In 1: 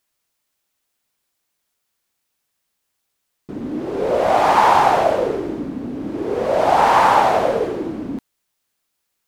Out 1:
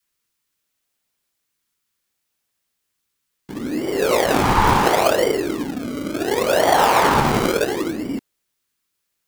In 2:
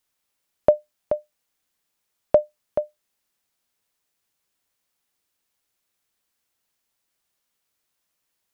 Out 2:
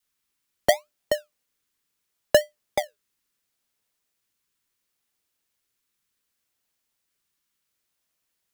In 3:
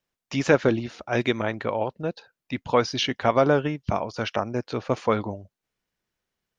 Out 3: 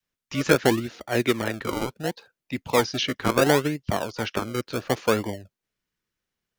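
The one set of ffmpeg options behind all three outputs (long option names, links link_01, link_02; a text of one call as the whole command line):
ffmpeg -i in.wav -filter_complex "[0:a]adynamicequalizer=threshold=0.0282:dfrequency=390:dqfactor=1.1:tfrequency=390:tqfactor=1.1:attack=5:release=100:ratio=0.375:range=2:mode=boostabove:tftype=bell,acrossover=split=280|790[link_01][link_02][link_03];[link_02]acrusher=samples=34:mix=1:aa=0.000001:lfo=1:lforange=34:lforate=0.71[link_04];[link_01][link_04][link_03]amix=inputs=3:normalize=0,volume=-1dB" out.wav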